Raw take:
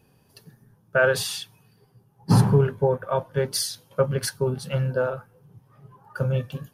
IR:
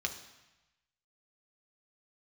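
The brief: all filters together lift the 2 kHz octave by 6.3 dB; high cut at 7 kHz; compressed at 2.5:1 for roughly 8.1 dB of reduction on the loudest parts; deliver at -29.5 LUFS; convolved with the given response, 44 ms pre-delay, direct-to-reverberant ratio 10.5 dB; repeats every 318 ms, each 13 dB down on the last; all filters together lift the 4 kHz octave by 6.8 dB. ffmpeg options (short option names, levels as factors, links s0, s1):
-filter_complex "[0:a]lowpass=7000,equalizer=f=2000:t=o:g=8.5,equalizer=f=4000:t=o:g=7,acompressor=threshold=0.0631:ratio=2.5,aecho=1:1:318|636|954:0.224|0.0493|0.0108,asplit=2[s0][s1];[1:a]atrim=start_sample=2205,adelay=44[s2];[s1][s2]afir=irnorm=-1:irlink=0,volume=0.211[s3];[s0][s3]amix=inputs=2:normalize=0,volume=0.75"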